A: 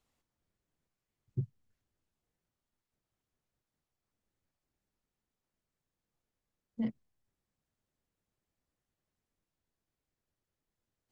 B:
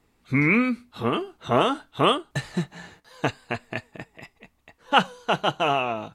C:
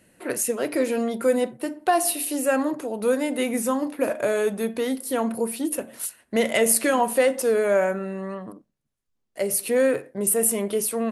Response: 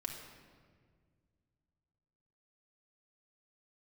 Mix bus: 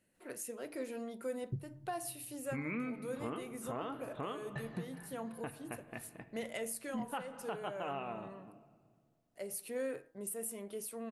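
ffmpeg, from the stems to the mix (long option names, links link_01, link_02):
-filter_complex "[0:a]adelay=150,volume=-2dB,asplit=2[link_01][link_02];[link_02]volume=-10.5dB[link_03];[1:a]lowpass=2200,adelay=2200,volume=-14dB,asplit=2[link_04][link_05];[link_05]volume=-6dB[link_06];[2:a]bandreject=frequency=159.5:width_type=h:width=4,bandreject=frequency=319:width_type=h:width=4,bandreject=frequency=478.5:width_type=h:width=4,bandreject=frequency=638:width_type=h:width=4,bandreject=frequency=797.5:width_type=h:width=4,bandreject=frequency=957:width_type=h:width=4,bandreject=frequency=1116.5:width_type=h:width=4,bandreject=frequency=1276:width_type=h:width=4,bandreject=frequency=1435.5:width_type=h:width=4,bandreject=frequency=1595:width_type=h:width=4,bandreject=frequency=1754.5:width_type=h:width=4,bandreject=frequency=1914:width_type=h:width=4,volume=-18dB[link_07];[3:a]atrim=start_sample=2205[link_08];[link_03][link_06]amix=inputs=2:normalize=0[link_09];[link_09][link_08]afir=irnorm=-1:irlink=0[link_10];[link_01][link_04][link_07][link_10]amix=inputs=4:normalize=0,alimiter=level_in=5.5dB:limit=-24dB:level=0:latency=1:release=400,volume=-5.5dB"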